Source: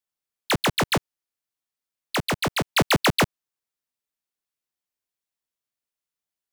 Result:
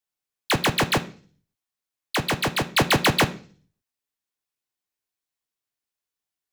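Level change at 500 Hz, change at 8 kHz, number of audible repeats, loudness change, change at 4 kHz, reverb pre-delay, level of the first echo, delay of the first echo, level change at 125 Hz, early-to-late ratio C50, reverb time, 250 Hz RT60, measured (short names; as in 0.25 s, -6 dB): +0.5 dB, +0.5 dB, none, +1.0 dB, +1.0 dB, 3 ms, none, none, +1.0 dB, 16.0 dB, 0.40 s, 0.55 s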